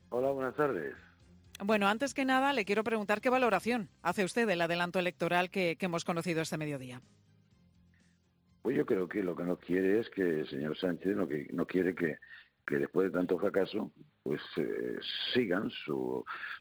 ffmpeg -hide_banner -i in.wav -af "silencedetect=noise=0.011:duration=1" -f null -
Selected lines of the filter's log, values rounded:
silence_start: 6.97
silence_end: 8.65 | silence_duration: 1.68